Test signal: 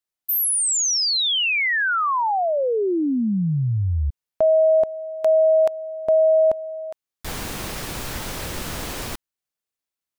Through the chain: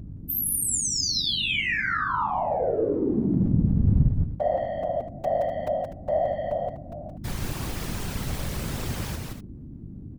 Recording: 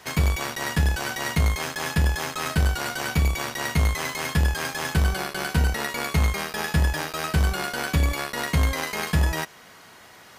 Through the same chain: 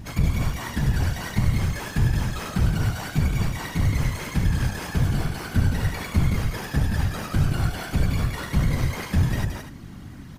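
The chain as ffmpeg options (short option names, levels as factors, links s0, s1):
-filter_complex "[0:a]lowshelf=f=180:g=10.5,asplit=2[s0][s1];[s1]asoftclip=type=tanh:threshold=0.126,volume=0.398[s2];[s0][s2]amix=inputs=2:normalize=0,aeval=exprs='val(0)+0.0447*(sin(2*PI*50*n/s)+sin(2*PI*2*50*n/s)/2+sin(2*PI*3*50*n/s)/3+sin(2*PI*4*50*n/s)/4+sin(2*PI*5*50*n/s)/5)':c=same,aecho=1:1:172|247.8:0.631|0.282,afftfilt=real='hypot(re,im)*cos(2*PI*random(0))':imag='hypot(re,im)*sin(2*PI*random(1))':win_size=512:overlap=0.75,volume=0.668"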